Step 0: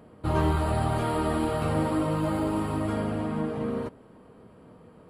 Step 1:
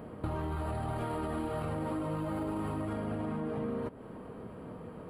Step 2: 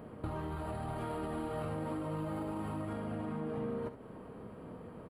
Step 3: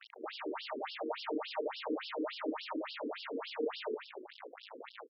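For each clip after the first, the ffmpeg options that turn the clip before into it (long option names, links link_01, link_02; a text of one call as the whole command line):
ffmpeg -i in.wav -af "alimiter=limit=-24dB:level=0:latency=1,equalizer=frequency=5900:width=0.79:gain=-8,acompressor=threshold=-39dB:ratio=6,volume=6.5dB" out.wav
ffmpeg -i in.wav -af "aecho=1:1:47|71:0.224|0.251,volume=-3.5dB" out.wav
ffmpeg -i in.wav -filter_complex "[0:a]acrusher=bits=6:mix=0:aa=0.000001,asplit=7[link_01][link_02][link_03][link_04][link_05][link_06][link_07];[link_02]adelay=148,afreqshift=-33,volume=-3.5dB[link_08];[link_03]adelay=296,afreqshift=-66,volume=-10.2dB[link_09];[link_04]adelay=444,afreqshift=-99,volume=-17dB[link_10];[link_05]adelay=592,afreqshift=-132,volume=-23.7dB[link_11];[link_06]adelay=740,afreqshift=-165,volume=-30.5dB[link_12];[link_07]adelay=888,afreqshift=-198,volume=-37.2dB[link_13];[link_01][link_08][link_09][link_10][link_11][link_12][link_13]amix=inputs=7:normalize=0,afftfilt=real='re*between(b*sr/1024,340*pow(4000/340,0.5+0.5*sin(2*PI*3.5*pts/sr))/1.41,340*pow(4000/340,0.5+0.5*sin(2*PI*3.5*pts/sr))*1.41)':imag='im*between(b*sr/1024,340*pow(4000/340,0.5+0.5*sin(2*PI*3.5*pts/sr))/1.41,340*pow(4000/340,0.5+0.5*sin(2*PI*3.5*pts/sr))*1.41)':win_size=1024:overlap=0.75,volume=5.5dB" out.wav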